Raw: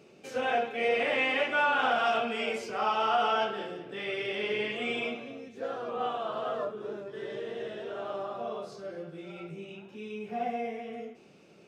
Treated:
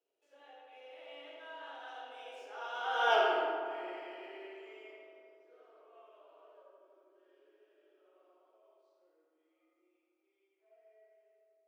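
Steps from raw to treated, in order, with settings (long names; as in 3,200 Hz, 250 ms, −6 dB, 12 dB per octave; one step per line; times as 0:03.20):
running median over 3 samples
source passing by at 0:03.15, 30 m/s, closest 2.5 metres
Butterworth high-pass 280 Hz 96 dB per octave
on a send: feedback echo with a low-pass in the loop 80 ms, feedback 84%, low-pass 3,400 Hz, level −7.5 dB
on the sum: comb and all-pass reverb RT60 1.1 s, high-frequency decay 0.7×, pre-delay 10 ms, DRR 1 dB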